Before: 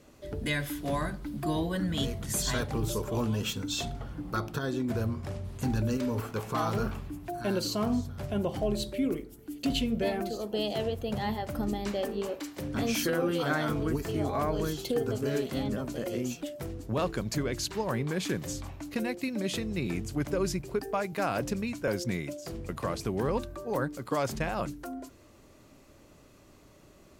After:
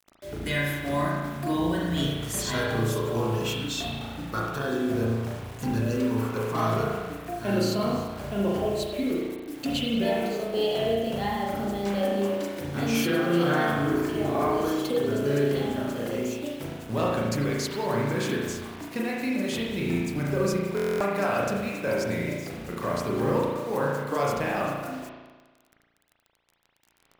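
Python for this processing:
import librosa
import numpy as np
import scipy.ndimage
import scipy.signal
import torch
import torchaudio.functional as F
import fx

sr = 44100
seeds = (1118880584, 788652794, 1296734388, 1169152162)

y = fx.highpass(x, sr, hz=120.0, slope=6)
y = fx.quant_dither(y, sr, seeds[0], bits=8, dither='none')
y = fx.rev_spring(y, sr, rt60_s=1.3, pass_ms=(35,), chirp_ms=65, drr_db=-4.0)
y = fx.buffer_glitch(y, sr, at_s=(20.75,), block=1024, repeats=10)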